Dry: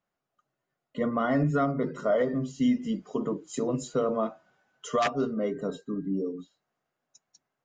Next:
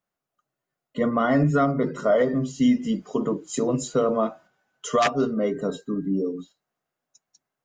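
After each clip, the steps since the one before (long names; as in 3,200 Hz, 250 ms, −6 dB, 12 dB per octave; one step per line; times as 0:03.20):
noise gate −52 dBFS, range −7 dB
high-shelf EQ 6,700 Hz +5.5 dB
level +5 dB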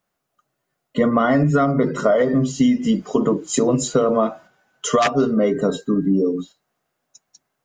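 downward compressor, threshold −22 dBFS, peak gain reduction 7.5 dB
level +9 dB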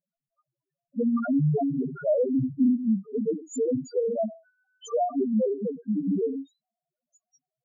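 treble cut that deepens with the level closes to 2,500 Hz, closed at −12 dBFS
spectral peaks only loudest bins 1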